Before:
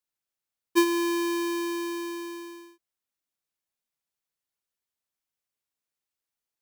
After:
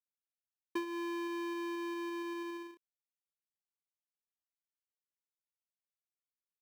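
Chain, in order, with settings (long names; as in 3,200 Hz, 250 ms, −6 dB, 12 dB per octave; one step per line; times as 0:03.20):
log-companded quantiser 6 bits
bass and treble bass −7 dB, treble −12 dB
downward compressor 6 to 1, threshold −40 dBFS, peak gain reduction 20 dB
level +3 dB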